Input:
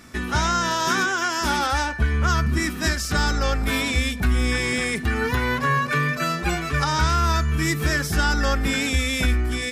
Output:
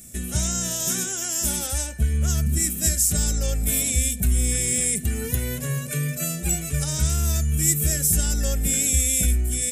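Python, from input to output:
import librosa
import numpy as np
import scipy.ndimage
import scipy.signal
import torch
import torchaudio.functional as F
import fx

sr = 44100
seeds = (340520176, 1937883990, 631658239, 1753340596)

y = fx.curve_eq(x, sr, hz=(200.0, 280.0, 620.0, 1000.0, 2800.0, 4900.0, 7700.0), db=(0, -9, -5, -24, -6, -7, 15))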